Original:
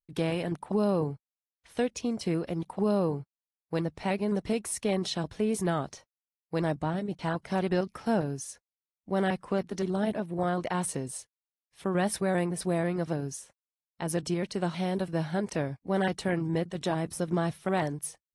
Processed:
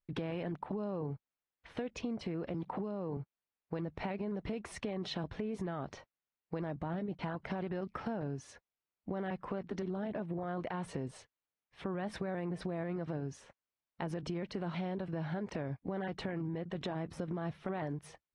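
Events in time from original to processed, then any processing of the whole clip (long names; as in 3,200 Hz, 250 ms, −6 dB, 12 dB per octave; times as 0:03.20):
0:02.54–0:03.17: multiband upward and downward compressor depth 100%
whole clip: low-pass filter 2,600 Hz 12 dB per octave; brickwall limiter −28 dBFS; downward compressor, threshold −40 dBFS; level +5 dB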